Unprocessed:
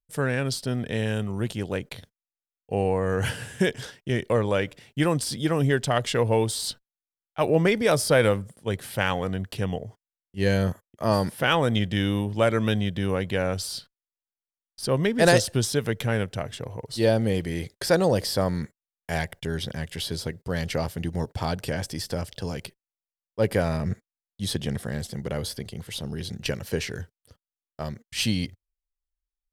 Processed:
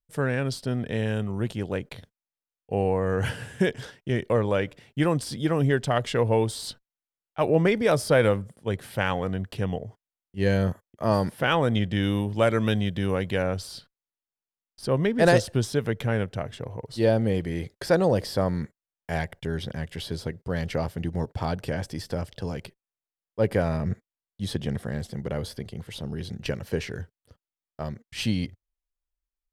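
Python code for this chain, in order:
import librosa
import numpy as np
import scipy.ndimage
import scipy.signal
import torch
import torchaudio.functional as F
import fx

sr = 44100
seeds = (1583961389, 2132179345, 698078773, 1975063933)

y = fx.high_shelf(x, sr, hz=3200.0, db=fx.steps((0.0, -7.5), (12.02, -2.0), (13.42, -9.5)))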